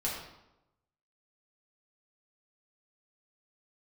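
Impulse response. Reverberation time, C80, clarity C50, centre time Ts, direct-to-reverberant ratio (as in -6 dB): 0.90 s, 5.0 dB, 2.5 dB, 52 ms, -6.0 dB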